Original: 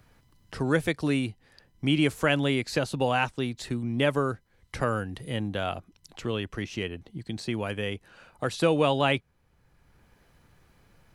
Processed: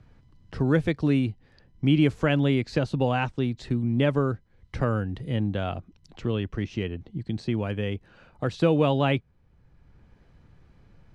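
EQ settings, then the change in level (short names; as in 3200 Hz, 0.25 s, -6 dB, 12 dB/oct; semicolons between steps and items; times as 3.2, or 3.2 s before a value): LPF 5300 Hz 12 dB/oct; low shelf 400 Hz +10.5 dB; -3.5 dB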